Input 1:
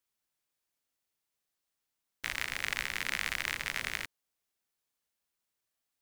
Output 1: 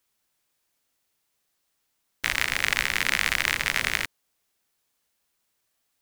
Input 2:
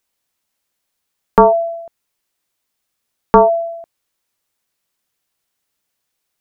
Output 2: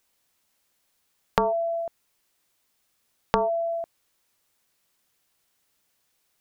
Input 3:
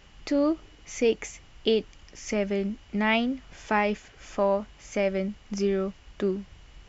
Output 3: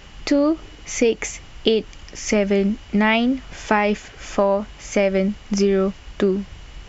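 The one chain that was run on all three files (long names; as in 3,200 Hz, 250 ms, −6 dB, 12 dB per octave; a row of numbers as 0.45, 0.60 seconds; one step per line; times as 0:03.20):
downward compressor 12 to 1, threshold −24 dBFS
normalise the peak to −2 dBFS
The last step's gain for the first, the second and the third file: +10.5, +3.0, +11.0 decibels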